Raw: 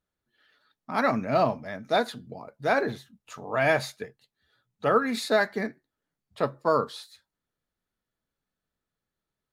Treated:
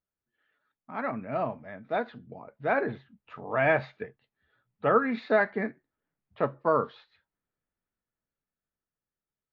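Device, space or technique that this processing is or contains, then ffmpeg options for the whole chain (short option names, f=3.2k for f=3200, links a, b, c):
action camera in a waterproof case: -af "lowpass=f=2.7k:w=0.5412,lowpass=f=2.7k:w=1.3066,dynaudnorm=f=280:g=17:m=10.5dB,volume=-8.5dB" -ar 16000 -c:a aac -b:a 48k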